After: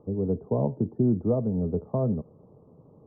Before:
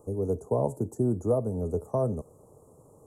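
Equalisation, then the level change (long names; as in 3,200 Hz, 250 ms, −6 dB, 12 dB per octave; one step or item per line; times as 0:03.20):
Gaussian smoothing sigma 3.9 samples
parametric band 190 Hz +10.5 dB 1.3 octaves
−2.5 dB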